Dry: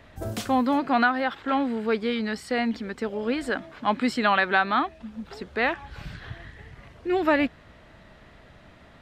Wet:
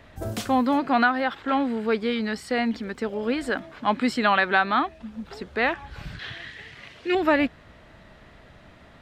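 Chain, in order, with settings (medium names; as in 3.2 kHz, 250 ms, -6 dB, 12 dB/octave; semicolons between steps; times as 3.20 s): 2.18–3.62 s: crackle 43 per s -49 dBFS; 6.19–7.15 s: frequency weighting D; trim +1 dB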